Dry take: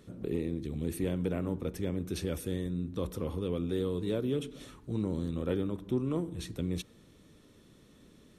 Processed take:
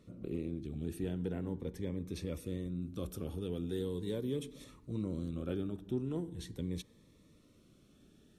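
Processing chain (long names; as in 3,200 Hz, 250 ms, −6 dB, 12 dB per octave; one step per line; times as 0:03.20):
high-shelf EQ 6,400 Hz −7.5 dB, from 0:02.82 +5.5 dB, from 0:04.64 −2 dB
phaser whose notches keep moving one way rising 0.41 Hz
level −4.5 dB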